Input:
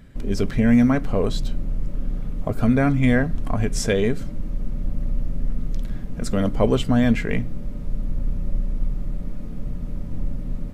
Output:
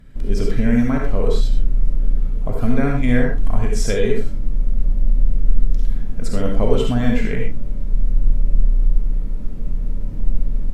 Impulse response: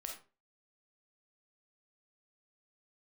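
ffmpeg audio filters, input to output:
-filter_complex "[0:a]lowshelf=frequency=72:gain=6.5[link_01];[1:a]atrim=start_sample=2205,afade=type=out:start_time=0.15:duration=0.01,atrim=end_sample=7056,asetrate=30870,aresample=44100[link_02];[link_01][link_02]afir=irnorm=-1:irlink=0"

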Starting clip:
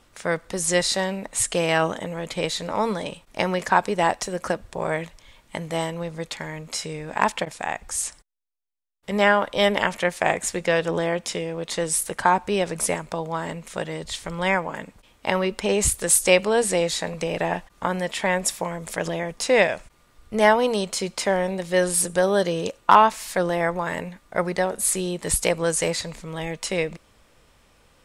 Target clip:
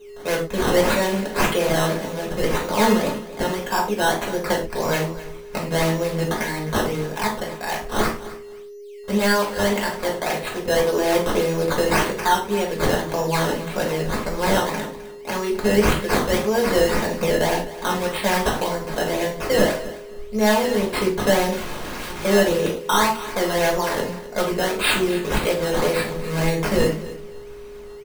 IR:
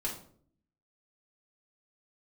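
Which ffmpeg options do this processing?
-filter_complex "[0:a]dynaudnorm=framelen=180:gausssize=3:maxgain=14dB,aeval=exprs='val(0)+0.0126*sin(2*PI*410*n/s)':channel_layout=same,acrusher=samples=13:mix=1:aa=0.000001:lfo=1:lforange=13:lforate=1.8,asoftclip=type=hard:threshold=-7dB,aecho=1:1:259|518:0.158|0.0317,asettb=1/sr,asplit=3[link_01][link_02][link_03];[link_01]atrim=end=21.524[link_04];[link_02]atrim=start=21.52:end=22.25,asetpts=PTS-STARTPTS,afade=type=in:duration=0.004:curve=qsin,afade=type=out:start_time=0.726:duration=0.004:curve=qsin,aeval=exprs='(mod(13.3*val(0)+1,2)-1)/13.3':channel_layout=same[link_05];[link_03]atrim=start=22.246[link_06];[link_04][link_05]acrossfade=duration=0.004:curve1=hsin:curve2=qsin[link_07];[link_07][link_06]acrossfade=duration=0.004:curve1=qsin:curve2=hsin[link_08];[1:a]atrim=start_sample=2205,afade=type=out:start_time=0.17:duration=0.01,atrim=end_sample=7938[link_09];[link_08][link_09]afir=irnorm=-1:irlink=0,volume=-7dB"

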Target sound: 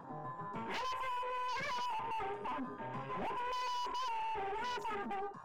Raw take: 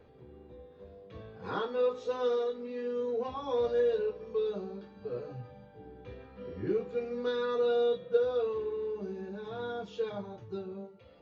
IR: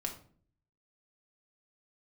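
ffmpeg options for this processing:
-af "aeval=exprs='(tanh(224*val(0)+0.35)-tanh(0.35))/224':channel_layout=same,asetrate=90846,aresample=44100,afwtdn=0.00158,volume=9.5dB"

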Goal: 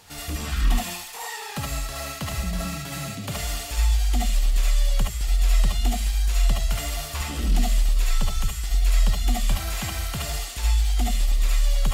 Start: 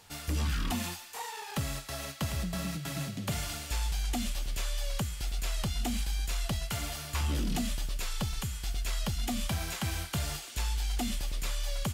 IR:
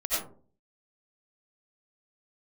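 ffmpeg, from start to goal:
-filter_complex "[0:a]asplit=2[link_01][link_02];[link_02]alimiter=level_in=12dB:limit=-24dB:level=0:latency=1,volume=-12dB,volume=-1dB[link_03];[link_01][link_03]amix=inputs=2:normalize=0,asettb=1/sr,asplit=3[link_04][link_05][link_06];[link_04]atrim=end=10.524[link_07];[link_05]atrim=start=10.52:end=11.51,asetpts=PTS-STARTPTS,afade=type=in:duration=0.004:curve=qsin,afade=type=out:start_time=0.986:duration=0.004:curve=qsin,aeval=exprs='sgn(val(0))*max(abs(val(0))-0.00168,0)':channel_layout=same[link_08];[link_06]atrim=start=11.506[link_09];[link_07][link_08]acrossfade=duration=0.004:curve1=hsin:curve2=qsin[link_10];[link_10][link_09]acrossfade=duration=0.004:curve1=qsin:curve2=hsin[link_11];[1:a]atrim=start_sample=2205,atrim=end_sample=3528[link_12];[link_11][link_12]afir=irnorm=-1:irlink=0,volume=1.5dB"

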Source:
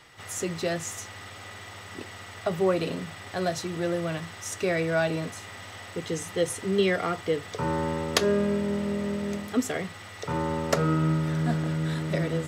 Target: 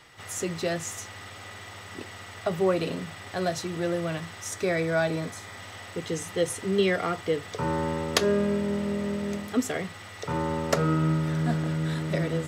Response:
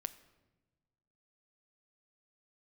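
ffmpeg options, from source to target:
-filter_complex "[0:a]asettb=1/sr,asplit=3[link_01][link_02][link_03];[link_01]atrim=end=4.494[link_04];[link_02]atrim=start=4.49:end=5.58,asetpts=PTS-STARTPTS,afade=type=in:duration=0.004:curve=qsin,afade=type=out:start_time=1.086:duration=0.004:curve=qsin,bandreject=frequency=2800:width=9.3[link_05];[link_03]atrim=start=5.576[link_06];[link_04][link_05]acrossfade=duration=0.004:curve1=hsin:curve2=qsin[link_07];[link_07][link_06]acrossfade=duration=0.004:curve1=qsin:curve2=hsin"

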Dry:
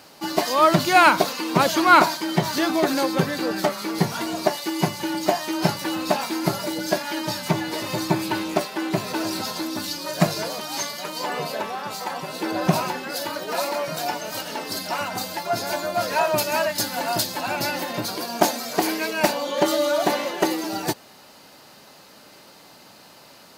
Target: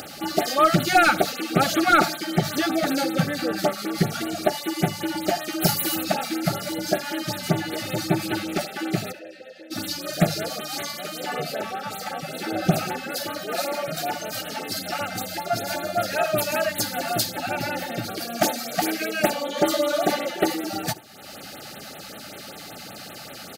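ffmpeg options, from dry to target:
ffmpeg -i in.wav -filter_complex "[0:a]asplit=3[link_01][link_02][link_03];[link_01]afade=type=out:start_time=5.6:duration=0.02[link_04];[link_02]aemphasis=mode=production:type=50fm,afade=type=in:start_time=5.6:duration=0.02,afade=type=out:start_time=6.03:duration=0.02[link_05];[link_03]afade=type=in:start_time=6.03:duration=0.02[link_06];[link_04][link_05][link_06]amix=inputs=3:normalize=0,asettb=1/sr,asplit=3[link_07][link_08][link_09];[link_07]atrim=end=17.304[link_10];[link_08]atrim=start=17.3:end=18.17,asetpts=PTS-STARTPTS,afade=type=in:duration=0.004:curve=qsin,afade=type=out:start_time=0.866:duration=0.004:curve=qsin,acrossover=split=2800[link_11][link_12];[link_12]acompressor=threshold=-34dB:ratio=4:attack=1:release=60[link_13];[link_11][link_13]amix=inputs=2:normalize=0[link_14];[link_09]atrim=start=18.166[link_15];[link_10][link_14]acrossfade=duration=0.004:curve1=hsin:curve2=qsin[link_16];[link_16][link_15]acrossfade=duration=0.004:curve1=qsin:curve2=hsin,equalizer=frequency=92:width=1.5:gain=3,acompressor=mode=upward:threshold=-27dB:ratio=2.5,asplit=3[link_17][link_18][link_19];[link_17]afade=type=out:start_time=9.11:duration=0.02[link_20];[link_18]asplit=3[link_21][link_22][link_23];[link_21]bandpass=frequency=530:width_type=q:width=8,volume=0dB[link_24];[link_22]bandpass=frequency=1840:width_type=q:width=8,volume=-6dB[link_25];[link_23]bandpass=frequency=2480:width_type=q:width=8,volume=-9dB[link_26];[link_24][link_25][link_26]amix=inputs=3:normalize=0,afade=type=in:start_time=9.11:duration=0.02,afade=type=out:start_time=9.7:duration=0.02[link_27];[link_19]afade=type=in:start_time=9.7:duration=0.02[link_28];[link_20][link_27][link_28]amix=inputs=3:normalize=0,asoftclip=type=hard:threshold=-8dB,asuperstop=centerf=1000:order=20:qfactor=4.3,aecho=1:1:76:0.0891,afftfilt=real='re*(1-between(b*sr/1024,340*pow(6200/340,0.5+0.5*sin(2*PI*5.2*pts/sr))/1.41,340*pow(6200/340,0.5+0.5*sin(2*PI*5.2*pts/sr))*1.41))':imag='im*(1-between(b*sr/1024,340*pow(6200/340,0.5+0.5*sin(2*PI*5.2*pts/sr))/1.41,340*pow(6200/340,0.5+0.5*sin(2*PI*5.2*pts/sr))*1.41))':win_size=1024:overlap=0.75" out.wav

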